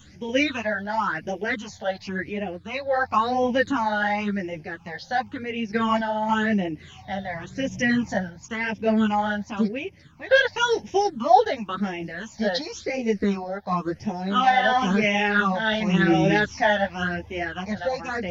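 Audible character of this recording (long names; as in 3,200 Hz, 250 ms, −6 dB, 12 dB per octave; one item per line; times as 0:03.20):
phaser sweep stages 8, 0.94 Hz, lowest notch 320–1,300 Hz
sample-and-hold tremolo
a shimmering, thickened sound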